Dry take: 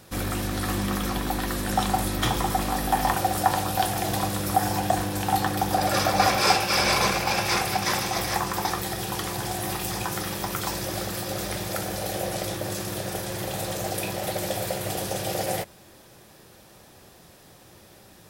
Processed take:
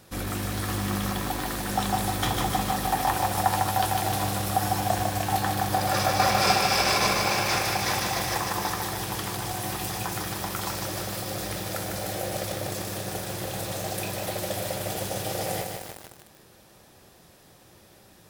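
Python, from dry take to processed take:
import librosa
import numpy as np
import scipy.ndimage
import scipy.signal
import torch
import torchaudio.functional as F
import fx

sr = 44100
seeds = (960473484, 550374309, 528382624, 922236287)

y = fx.echo_crushed(x, sr, ms=151, feedback_pct=80, bits=6, wet_db=-3.5)
y = y * 10.0 ** (-3.0 / 20.0)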